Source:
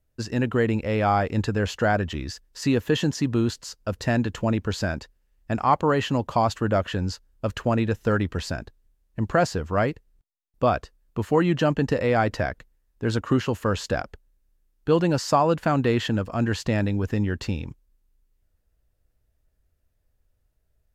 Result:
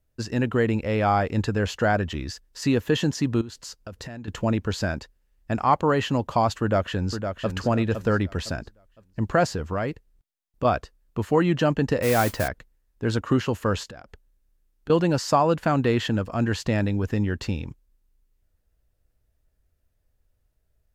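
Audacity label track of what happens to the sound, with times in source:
3.410000	4.280000	compression 12:1, threshold -33 dBFS
6.610000	7.560000	echo throw 510 ms, feedback 30%, level -7 dB
9.550000	10.650000	compression, threshold -22 dBFS
12.020000	12.480000	modulation noise under the signal 12 dB
13.830000	14.900000	compression 10:1, threshold -38 dBFS

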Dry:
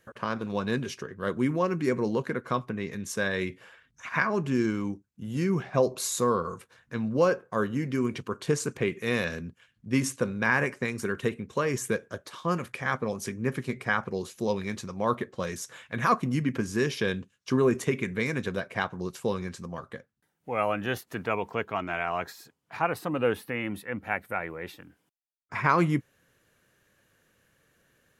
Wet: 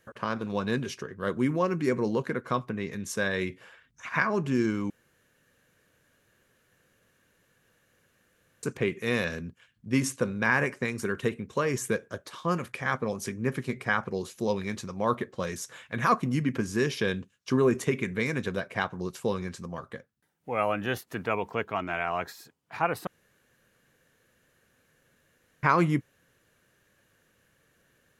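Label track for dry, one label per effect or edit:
4.900000	8.630000	room tone
23.070000	25.630000	room tone

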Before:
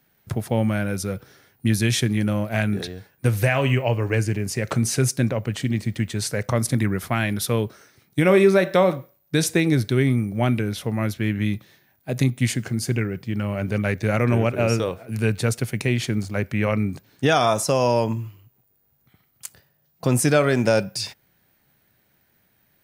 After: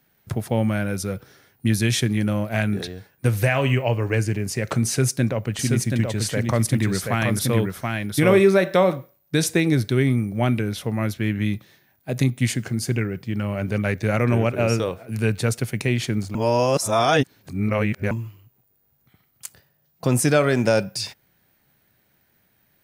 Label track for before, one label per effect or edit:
4.860000	8.530000	delay 729 ms -3.5 dB
16.350000	18.110000	reverse

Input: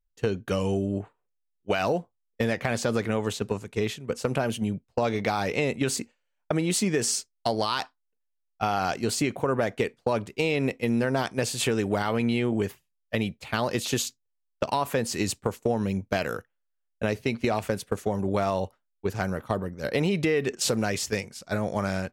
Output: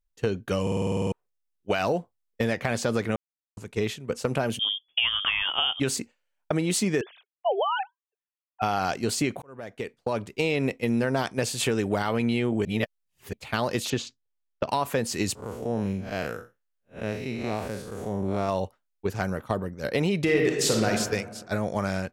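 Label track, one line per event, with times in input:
0.620000	0.620000	stutter in place 0.05 s, 10 plays
3.160000	3.570000	mute
4.590000	5.800000	frequency inversion carrier 3.4 kHz
7.010000	8.620000	formants replaced by sine waves
9.420000	10.350000	fade in
12.650000	13.330000	reverse
13.900000	14.690000	distance through air 140 m
15.350000	18.490000	spectral blur width 137 ms
20.230000	20.890000	reverb throw, RT60 1.4 s, DRR 0 dB

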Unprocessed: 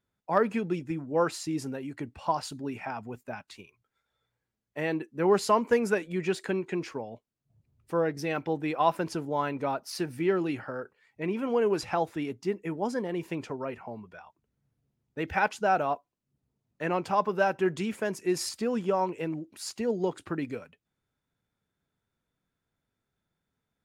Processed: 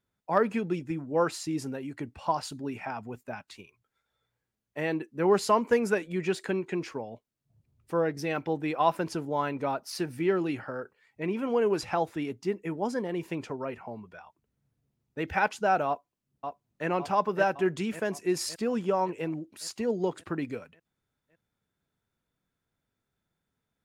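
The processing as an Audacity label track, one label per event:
15.870000	16.870000	echo throw 560 ms, feedback 60%, level -6.5 dB

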